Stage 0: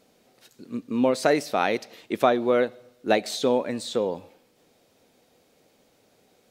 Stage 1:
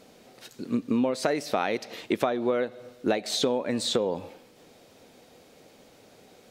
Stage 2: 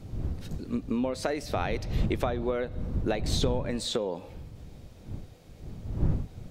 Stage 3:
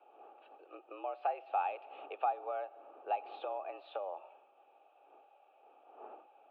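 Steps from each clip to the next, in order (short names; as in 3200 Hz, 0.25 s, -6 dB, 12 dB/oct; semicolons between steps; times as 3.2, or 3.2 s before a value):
high shelf 10000 Hz -5.5 dB; compressor 10:1, threshold -30 dBFS, peak gain reduction 16 dB; gain +8 dB
wind noise 120 Hz -29 dBFS; gain -4 dB
vowel filter a; mistuned SSB +80 Hz 290–3100 Hz; gain +3.5 dB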